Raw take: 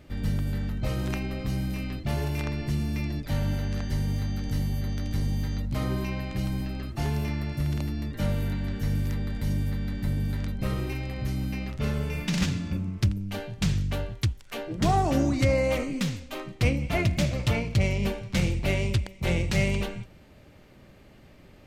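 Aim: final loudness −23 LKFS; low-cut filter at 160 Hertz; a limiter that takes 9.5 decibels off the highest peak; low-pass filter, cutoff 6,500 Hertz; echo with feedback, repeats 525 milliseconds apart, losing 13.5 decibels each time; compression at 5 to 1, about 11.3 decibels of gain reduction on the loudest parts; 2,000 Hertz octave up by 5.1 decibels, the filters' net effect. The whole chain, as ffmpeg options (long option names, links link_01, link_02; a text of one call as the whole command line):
ffmpeg -i in.wav -af "highpass=160,lowpass=6500,equalizer=frequency=2000:width_type=o:gain=6,acompressor=threshold=-33dB:ratio=5,alimiter=level_in=3dB:limit=-24dB:level=0:latency=1,volume=-3dB,aecho=1:1:525|1050:0.211|0.0444,volume=14.5dB" out.wav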